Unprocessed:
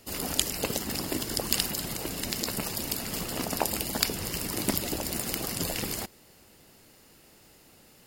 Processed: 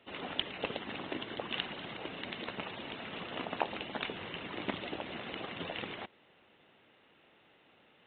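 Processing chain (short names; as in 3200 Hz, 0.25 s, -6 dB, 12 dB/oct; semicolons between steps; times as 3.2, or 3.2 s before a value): HPF 99 Hz 12 dB/oct; low shelf 340 Hz -10.5 dB; gain -2 dB; IMA ADPCM 32 kbps 8000 Hz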